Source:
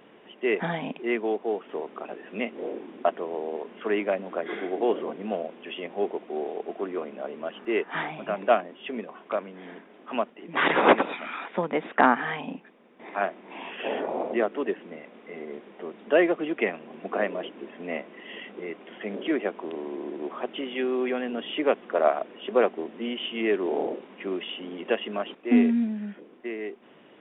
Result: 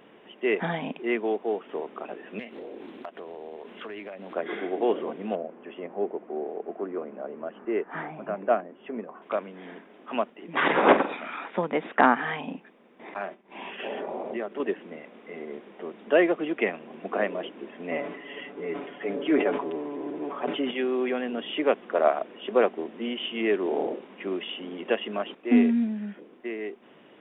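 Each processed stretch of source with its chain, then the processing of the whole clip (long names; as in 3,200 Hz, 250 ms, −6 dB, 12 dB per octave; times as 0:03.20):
0:02.39–0:04.36: downward compressor 8 to 1, threshold −36 dBFS + high-shelf EQ 3,400 Hz +10 dB + highs frequency-modulated by the lows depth 0.19 ms
0:05.35–0:09.22: Chebyshev low-pass filter 1,300 Hz + dynamic equaliser 1,000 Hz, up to −5 dB, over −40 dBFS, Q 1.4
0:10.60–0:11.50: high-shelf EQ 3,500 Hz −7.5 dB + double-tracking delay 46 ms −10 dB
0:13.14–0:14.60: downward expander −39 dBFS + comb filter 5.1 ms, depth 31% + downward compressor 2.5 to 1, threshold −31 dBFS
0:17.91–0:20.71: high-shelf EQ 3,300 Hz −10 dB + comb filter 7 ms, depth 91% + level that may fall only so fast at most 65 dB per second
whole clip: no processing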